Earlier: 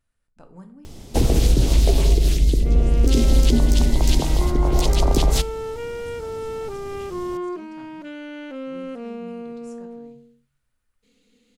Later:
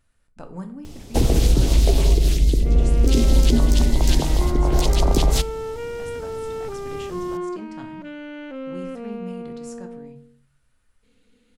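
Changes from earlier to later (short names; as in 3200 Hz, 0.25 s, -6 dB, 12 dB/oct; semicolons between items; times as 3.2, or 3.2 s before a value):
speech +9.0 dB; second sound: add tone controls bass -1 dB, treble -8 dB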